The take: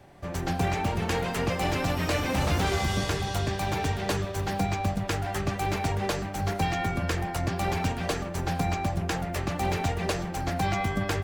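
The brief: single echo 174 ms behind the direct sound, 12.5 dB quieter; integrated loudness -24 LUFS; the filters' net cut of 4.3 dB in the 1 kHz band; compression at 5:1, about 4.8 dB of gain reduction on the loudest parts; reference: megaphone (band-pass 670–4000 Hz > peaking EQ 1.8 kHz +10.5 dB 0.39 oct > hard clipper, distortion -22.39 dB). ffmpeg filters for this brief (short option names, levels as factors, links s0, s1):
-af "equalizer=f=1000:t=o:g=-4.5,acompressor=threshold=0.0398:ratio=5,highpass=670,lowpass=4000,equalizer=f=1800:t=o:w=0.39:g=10.5,aecho=1:1:174:0.237,asoftclip=type=hard:threshold=0.0531,volume=3.55"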